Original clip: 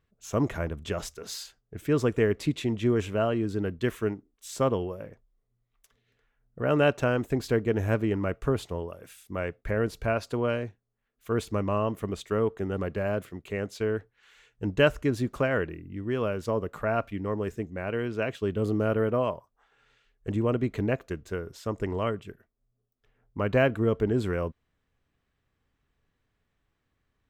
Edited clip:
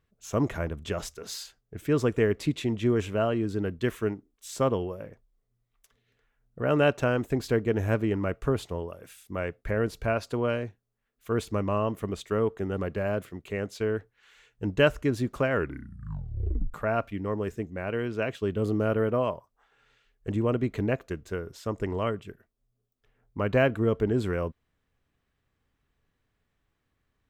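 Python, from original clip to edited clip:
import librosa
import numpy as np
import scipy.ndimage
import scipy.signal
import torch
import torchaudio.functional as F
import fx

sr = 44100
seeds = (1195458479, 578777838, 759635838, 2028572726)

y = fx.edit(x, sr, fx.tape_stop(start_s=15.52, length_s=1.22), tone=tone)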